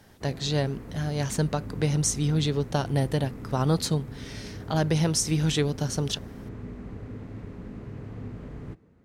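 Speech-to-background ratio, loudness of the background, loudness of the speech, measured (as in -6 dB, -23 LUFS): 13.5 dB, -40.5 LUFS, -27.0 LUFS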